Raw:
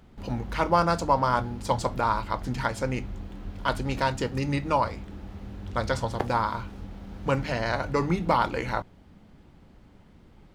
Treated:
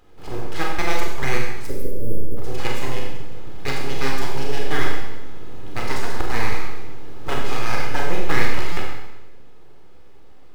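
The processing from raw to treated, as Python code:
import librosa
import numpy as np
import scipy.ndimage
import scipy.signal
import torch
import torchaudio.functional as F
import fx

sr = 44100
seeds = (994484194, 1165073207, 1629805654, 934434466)

p1 = scipy.signal.sosfilt(scipy.signal.butter(2, 61.0, 'highpass', fs=sr, output='sos'), x)
p2 = np.abs(p1)
p3 = p2 + 0.4 * np.pad(p2, (int(2.4 * sr / 1000.0), 0))[:len(p2)]
p4 = fx.quant_float(p3, sr, bits=2)
p5 = p3 + F.gain(torch.from_numpy(p4), -5.0).numpy()
p6 = fx.step_gate(p5, sr, bpm=153, pattern='xx.xx...x', floor_db=-60.0, edge_ms=4.5, at=(0.66, 1.55), fade=0.02)
p7 = fx.spec_erase(p6, sr, start_s=1.67, length_s=0.7, low_hz=610.0, high_hz=9700.0)
p8 = fx.rev_schroeder(p7, sr, rt60_s=1.0, comb_ms=30, drr_db=-1.0)
p9 = fx.buffer_glitch(p8, sr, at_s=(8.72,), block=256, repeats=7)
y = F.gain(torch.from_numpy(p9), -3.0).numpy()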